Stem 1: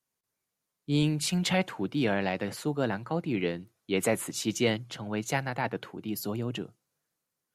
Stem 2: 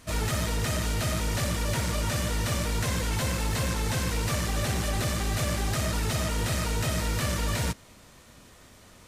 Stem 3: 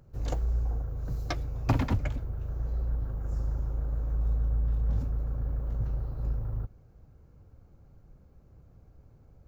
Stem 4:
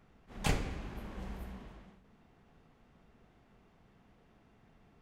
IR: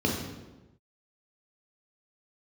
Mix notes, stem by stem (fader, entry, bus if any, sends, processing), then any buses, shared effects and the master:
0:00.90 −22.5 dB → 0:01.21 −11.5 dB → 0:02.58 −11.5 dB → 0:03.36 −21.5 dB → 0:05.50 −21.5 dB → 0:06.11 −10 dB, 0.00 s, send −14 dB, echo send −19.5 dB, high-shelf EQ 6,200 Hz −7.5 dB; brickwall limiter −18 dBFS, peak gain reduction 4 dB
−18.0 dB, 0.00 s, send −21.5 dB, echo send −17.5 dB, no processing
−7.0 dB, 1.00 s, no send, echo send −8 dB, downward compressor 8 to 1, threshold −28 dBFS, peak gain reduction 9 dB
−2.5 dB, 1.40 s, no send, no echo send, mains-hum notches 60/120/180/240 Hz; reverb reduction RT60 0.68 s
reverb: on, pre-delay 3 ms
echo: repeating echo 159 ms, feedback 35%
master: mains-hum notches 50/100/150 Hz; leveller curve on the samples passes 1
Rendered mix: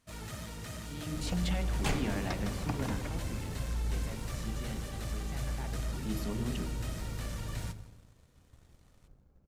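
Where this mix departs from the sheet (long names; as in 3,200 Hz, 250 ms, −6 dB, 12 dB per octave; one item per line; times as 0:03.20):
stem 4: missing reverb reduction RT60 0.68 s
reverb return −8.0 dB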